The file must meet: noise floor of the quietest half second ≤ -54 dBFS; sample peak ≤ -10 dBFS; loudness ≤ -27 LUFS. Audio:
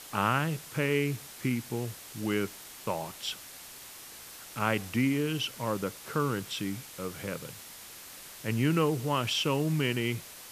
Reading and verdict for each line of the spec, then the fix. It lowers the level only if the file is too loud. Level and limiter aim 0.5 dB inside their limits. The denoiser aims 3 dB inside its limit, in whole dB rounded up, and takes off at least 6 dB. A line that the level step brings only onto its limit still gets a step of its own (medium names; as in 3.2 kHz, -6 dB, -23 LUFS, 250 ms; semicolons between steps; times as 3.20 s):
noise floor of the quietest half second -47 dBFS: fail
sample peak -11.0 dBFS: pass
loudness -31.5 LUFS: pass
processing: noise reduction 10 dB, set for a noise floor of -47 dBFS